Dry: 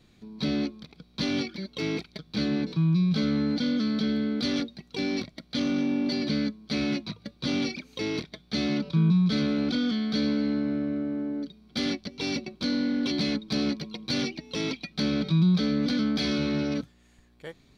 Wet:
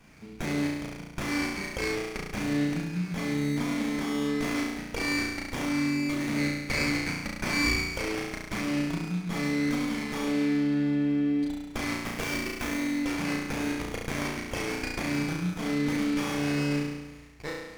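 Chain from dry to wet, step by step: 11.95–12.74 s: block-companded coder 3-bit; resonant high shelf 1.7 kHz +7 dB, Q 3; compression 10:1, threshold -30 dBFS, peak gain reduction 12.5 dB; 6.37–7.91 s: peaking EQ 2.2 kHz +10 dB 0.3 oct; on a send: flutter echo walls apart 5.9 m, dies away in 1.1 s; on the sum: sliding maximum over 9 samples

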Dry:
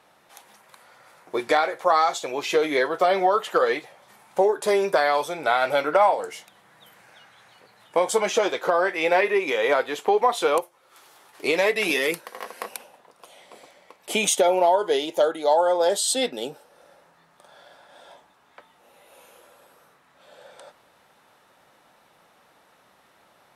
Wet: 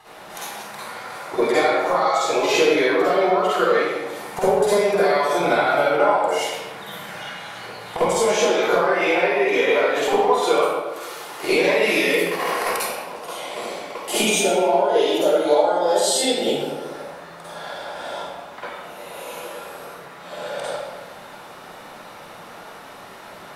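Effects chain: compression 10:1, threshold -34 dBFS, peak gain reduction 20 dB; reverberation RT60 1.2 s, pre-delay 44 ms, DRR -11 dB; trim +4 dB

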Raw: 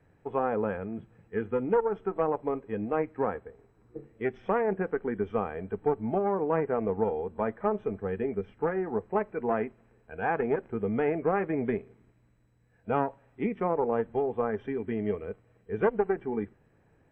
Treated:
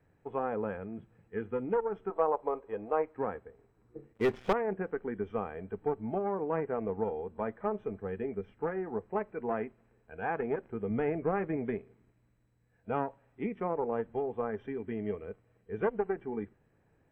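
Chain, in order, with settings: 2.10–3.16 s: graphic EQ 125/250/500/1000/2000 Hz -10/-7/+5/+7/-3 dB; 4.13–4.53 s: waveshaping leveller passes 3; 10.90–11.57 s: bass shelf 160 Hz +8 dB; trim -5 dB

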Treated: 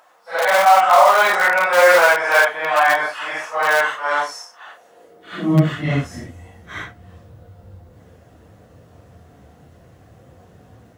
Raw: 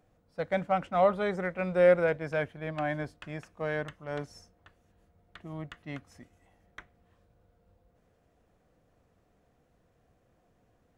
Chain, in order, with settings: phase randomisation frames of 200 ms; band-stop 2.4 kHz, Q 21; in parallel at -11 dB: integer overflow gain 26.5 dB; on the sum: high-pass sweep 960 Hz -> 86 Hz, 4.57–6.00 s; loudness maximiser +18.5 dB; trim -1 dB

